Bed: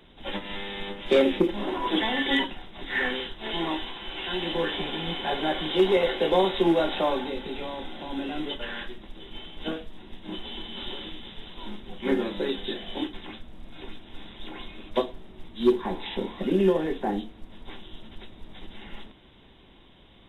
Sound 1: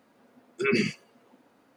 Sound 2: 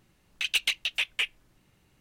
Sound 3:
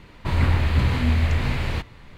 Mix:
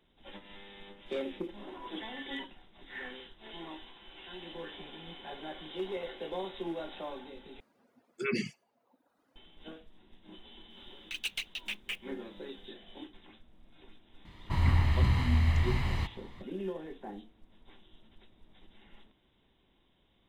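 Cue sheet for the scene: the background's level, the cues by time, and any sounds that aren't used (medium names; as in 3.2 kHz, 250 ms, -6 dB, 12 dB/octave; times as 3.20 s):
bed -16 dB
7.60 s: replace with 1 -7 dB + reverb removal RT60 0.97 s
10.70 s: add 2 -10 dB + block-companded coder 5-bit
14.25 s: add 3 -9 dB + comb 1 ms, depth 50%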